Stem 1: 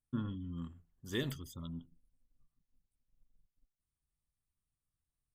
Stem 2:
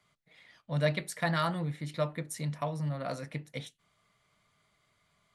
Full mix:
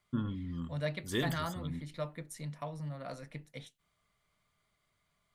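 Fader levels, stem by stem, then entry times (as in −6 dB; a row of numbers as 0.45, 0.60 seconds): +3.0, −7.0 decibels; 0.00, 0.00 seconds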